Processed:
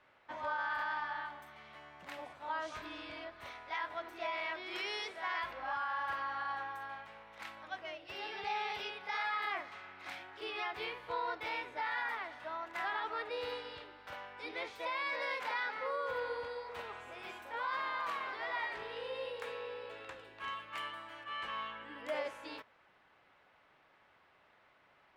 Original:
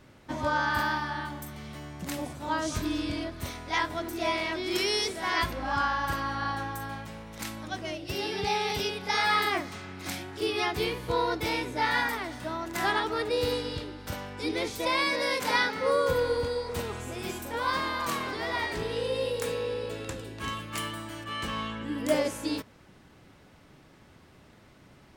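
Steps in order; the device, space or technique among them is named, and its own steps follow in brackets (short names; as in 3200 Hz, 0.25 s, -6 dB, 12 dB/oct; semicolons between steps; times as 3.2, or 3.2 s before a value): DJ mixer with the lows and highs turned down (three-band isolator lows -21 dB, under 570 Hz, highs -21 dB, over 3300 Hz; limiter -24 dBFS, peak gain reduction 7.5 dB); gain -4.5 dB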